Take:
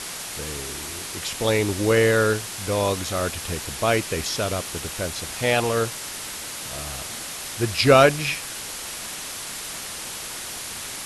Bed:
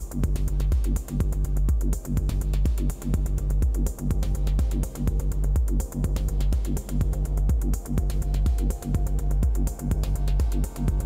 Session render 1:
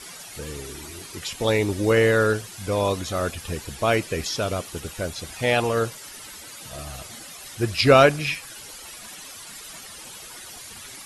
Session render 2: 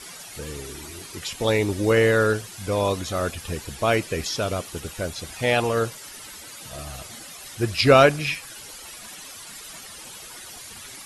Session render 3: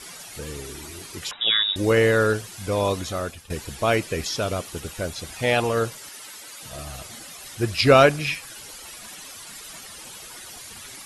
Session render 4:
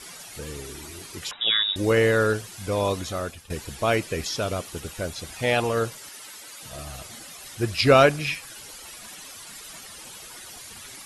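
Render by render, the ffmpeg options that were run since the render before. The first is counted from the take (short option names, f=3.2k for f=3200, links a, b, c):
-af "afftdn=nr=12:nf=-34"
-af anull
-filter_complex "[0:a]asettb=1/sr,asplit=3[a][b][c];[a]atrim=end=1.314[d];[b]atrim=start=1.31:end=1.76,asetpts=PTS-STARTPTS,afade=t=in:d=0.004:c=qsin,afade=t=out:st=0.446:d=0.004:c=qsin,lowpass=f=3.3k:t=q:w=0.5098,lowpass=f=3.3k:t=q:w=0.6013,lowpass=f=3.3k:t=q:w=0.9,lowpass=f=3.3k:t=q:w=2.563,afreqshift=-3900[e];[c]atrim=start=1.756[f];[d][e]acrossfade=d=0.004:c1=hsin:c2=qsin[g];[g][f]acrossfade=d=0.004:c1=qsin:c2=hsin,asettb=1/sr,asplit=3[h][i][j];[h]atrim=end=6.094[k];[i]atrim=start=6.09:end=6.63,asetpts=PTS-STARTPTS,afade=t=in:d=0.004:c=qsin,afade=t=out:st=0.536:d=0.004:c=qsin,highpass=f=400:p=1[l];[j]atrim=start=6.626[m];[k][l]acrossfade=d=0.004:c1=hsin:c2=qsin[n];[n][m]acrossfade=d=0.004:c1=qsin:c2=hsin,asplit=2[o][p];[o]atrim=end=3.5,asetpts=PTS-STARTPTS,afade=t=out:st=3.05:d=0.45:silence=0.188365[q];[p]atrim=start=3.5,asetpts=PTS-STARTPTS,afade=t=in:d=0.004:c=hsin:silence=0.188365[r];[q][r]concat=n=2:v=0:a=1"
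-af "volume=-1.5dB"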